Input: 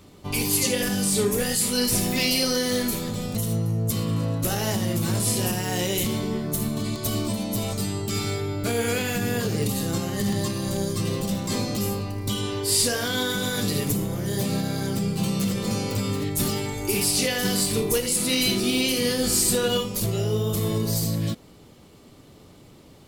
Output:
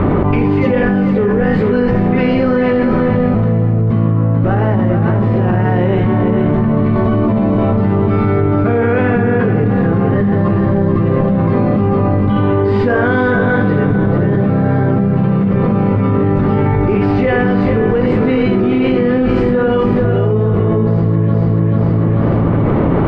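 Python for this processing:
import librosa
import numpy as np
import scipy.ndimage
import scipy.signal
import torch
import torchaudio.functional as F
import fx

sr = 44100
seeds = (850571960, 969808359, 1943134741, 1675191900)

y = scipy.signal.sosfilt(scipy.signal.butter(4, 1700.0, 'lowpass', fs=sr, output='sos'), x)
y = fx.echo_feedback(y, sr, ms=440, feedback_pct=35, wet_db=-7.0)
y = fx.env_flatten(y, sr, amount_pct=100)
y = y * 10.0 ** (7.0 / 20.0)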